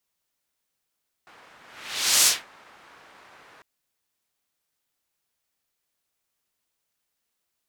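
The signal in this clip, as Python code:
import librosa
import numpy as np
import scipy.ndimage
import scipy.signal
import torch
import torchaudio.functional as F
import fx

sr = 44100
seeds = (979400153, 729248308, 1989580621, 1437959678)

y = fx.whoosh(sr, seeds[0], length_s=2.35, peak_s=0.99, rise_s=0.68, fall_s=0.21, ends_hz=1300.0, peak_hz=7100.0, q=1.0, swell_db=35)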